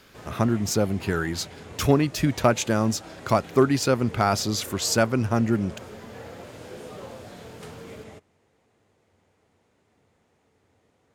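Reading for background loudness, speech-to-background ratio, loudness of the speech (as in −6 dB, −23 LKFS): −42.5 LKFS, 18.5 dB, −24.0 LKFS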